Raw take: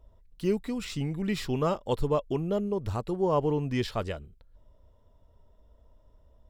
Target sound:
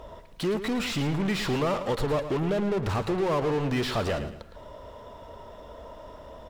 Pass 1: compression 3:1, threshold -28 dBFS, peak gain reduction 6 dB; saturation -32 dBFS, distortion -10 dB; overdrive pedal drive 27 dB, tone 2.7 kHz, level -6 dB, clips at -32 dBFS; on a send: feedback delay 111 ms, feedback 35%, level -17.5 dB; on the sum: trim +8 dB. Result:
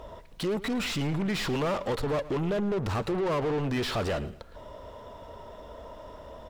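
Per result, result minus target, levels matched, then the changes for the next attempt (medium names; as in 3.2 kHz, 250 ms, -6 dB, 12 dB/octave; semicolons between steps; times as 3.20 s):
saturation: distortion +11 dB; echo-to-direct -6.5 dB
change: saturation -23 dBFS, distortion -21 dB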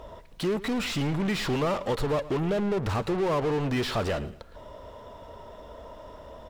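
echo-to-direct -6.5 dB
change: feedback delay 111 ms, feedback 35%, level -11 dB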